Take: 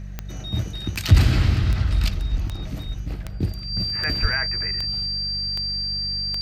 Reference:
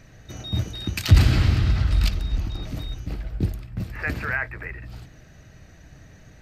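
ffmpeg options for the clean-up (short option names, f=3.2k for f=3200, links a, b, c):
-filter_complex "[0:a]adeclick=t=4,bandreject=f=48.6:t=h:w=4,bandreject=f=97.2:t=h:w=4,bandreject=f=145.8:t=h:w=4,bandreject=f=194.4:t=h:w=4,bandreject=f=4.7k:w=30,asplit=3[a][b][c];[a]afade=t=out:st=4.21:d=0.02[d];[b]highpass=f=140:w=0.5412,highpass=f=140:w=1.3066,afade=t=in:st=4.21:d=0.02,afade=t=out:st=4.33:d=0.02[e];[c]afade=t=in:st=4.33:d=0.02[f];[d][e][f]amix=inputs=3:normalize=0"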